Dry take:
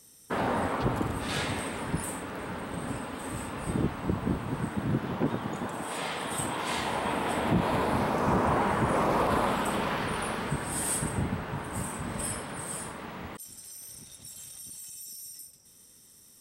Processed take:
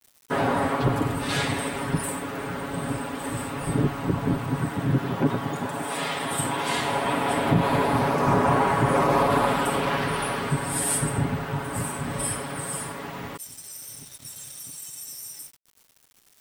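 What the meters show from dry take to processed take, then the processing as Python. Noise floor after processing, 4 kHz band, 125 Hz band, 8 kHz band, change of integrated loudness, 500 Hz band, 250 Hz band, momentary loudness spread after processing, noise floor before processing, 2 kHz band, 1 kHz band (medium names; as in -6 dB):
-59 dBFS, +5.0 dB, +6.5 dB, +5.0 dB, +5.5 dB, +5.5 dB, +4.5 dB, 15 LU, -56 dBFS, +5.0 dB, +5.5 dB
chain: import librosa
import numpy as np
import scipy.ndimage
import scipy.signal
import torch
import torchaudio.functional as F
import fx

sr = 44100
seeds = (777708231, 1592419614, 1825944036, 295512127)

y = fx.vibrato(x, sr, rate_hz=8.3, depth_cents=16.0)
y = y + 0.69 * np.pad(y, (int(7.2 * sr / 1000.0), 0))[:len(y)]
y = np.where(np.abs(y) >= 10.0 ** (-46.5 / 20.0), y, 0.0)
y = F.gain(torch.from_numpy(y), 3.5).numpy()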